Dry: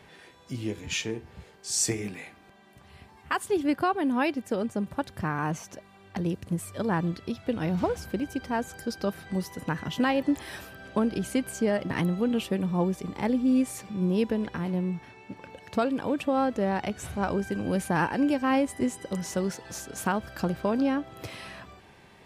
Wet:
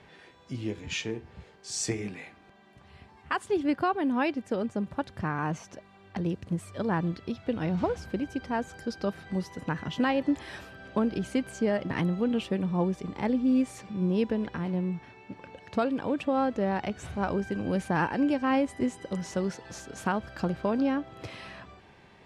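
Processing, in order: distance through air 67 m; trim -1 dB

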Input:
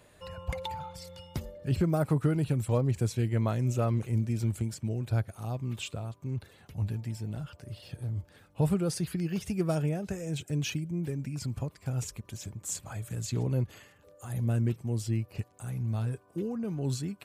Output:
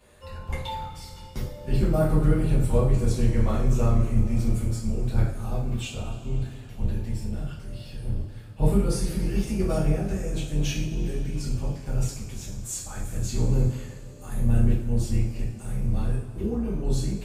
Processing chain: octave divider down 2 oct, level +1 dB; two-slope reverb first 0.52 s, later 4.1 s, from -18 dB, DRR -8 dB; trim -5 dB

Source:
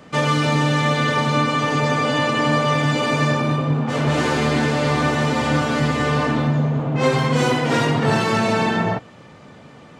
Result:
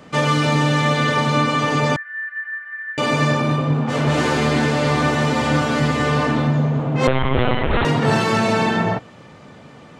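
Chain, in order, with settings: 1.96–2.98 s: Butterworth band-pass 1.7 kHz, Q 7.1; 7.07–7.85 s: LPC vocoder at 8 kHz pitch kept; trim +1 dB

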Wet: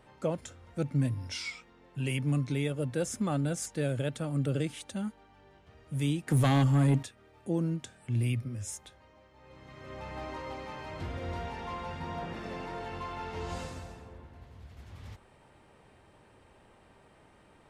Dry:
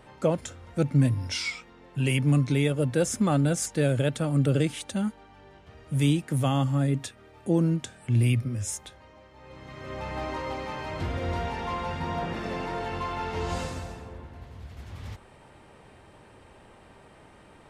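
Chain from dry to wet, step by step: 6.27–7.03 s: sine folder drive 6 dB, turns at -12 dBFS; trim -7 dB

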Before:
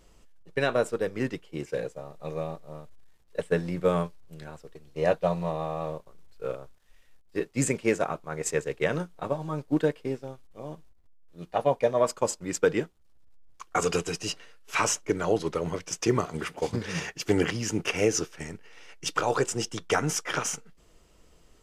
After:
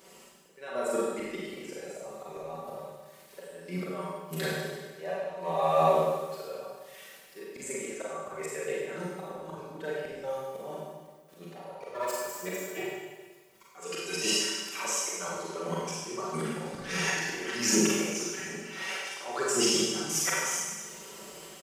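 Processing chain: 11.69–13.74 s: comb filter that takes the minimum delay 2.1 ms; high-pass 170 Hz 12 dB/octave; tone controls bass -7 dB, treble -2 dB; comb 5.2 ms, depth 67%; reverb removal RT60 0.59 s; treble shelf 9.6 kHz +10.5 dB; compression 8:1, threshold -36 dBFS, peak gain reduction 19.5 dB; slow attack 492 ms; level rider gain up to 7.5 dB; Schroeder reverb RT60 1.4 s, combs from 33 ms, DRR -6 dB; trim +4 dB

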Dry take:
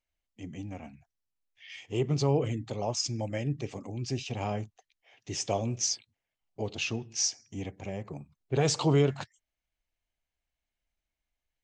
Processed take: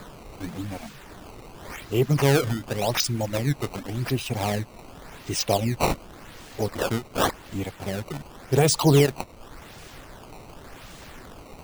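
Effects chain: added noise pink -49 dBFS; reverb removal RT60 0.58 s; decimation with a swept rate 15×, swing 160% 0.89 Hz; trim +7.5 dB

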